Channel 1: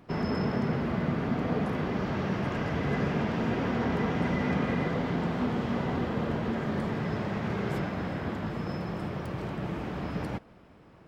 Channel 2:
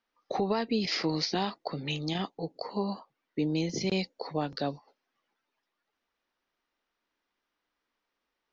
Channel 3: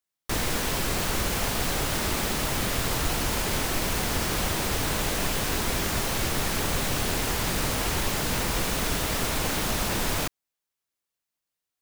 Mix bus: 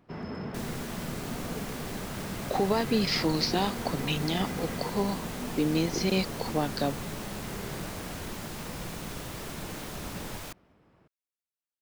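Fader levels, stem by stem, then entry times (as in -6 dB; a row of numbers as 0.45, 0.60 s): -8.0, +2.5, -13.5 dB; 0.00, 2.20, 0.25 s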